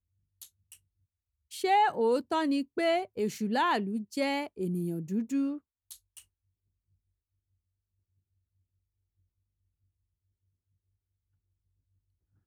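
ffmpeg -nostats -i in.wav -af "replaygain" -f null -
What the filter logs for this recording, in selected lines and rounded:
track_gain = +11.8 dB
track_peak = 0.103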